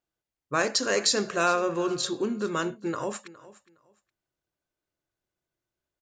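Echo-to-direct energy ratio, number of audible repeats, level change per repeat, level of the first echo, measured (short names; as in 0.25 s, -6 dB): -19.0 dB, 2, -13.5 dB, -19.0 dB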